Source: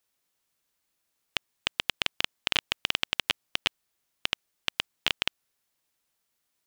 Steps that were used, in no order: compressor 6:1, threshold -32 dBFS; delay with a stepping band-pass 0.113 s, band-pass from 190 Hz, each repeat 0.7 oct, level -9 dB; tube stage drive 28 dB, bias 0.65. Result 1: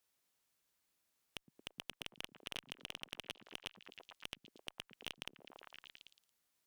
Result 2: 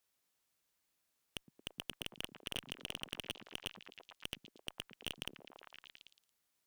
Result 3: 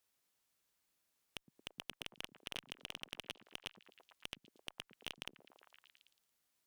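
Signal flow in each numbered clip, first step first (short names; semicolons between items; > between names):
delay with a stepping band-pass > compressor > tube stage; delay with a stepping band-pass > tube stage > compressor; compressor > delay with a stepping band-pass > tube stage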